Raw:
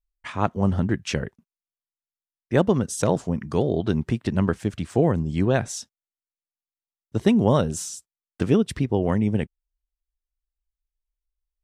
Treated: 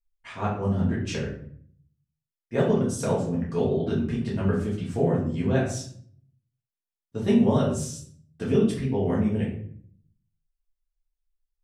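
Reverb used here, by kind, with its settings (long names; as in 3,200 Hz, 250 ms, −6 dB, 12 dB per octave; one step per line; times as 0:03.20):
rectangular room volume 73 cubic metres, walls mixed, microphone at 1.7 metres
level −11.5 dB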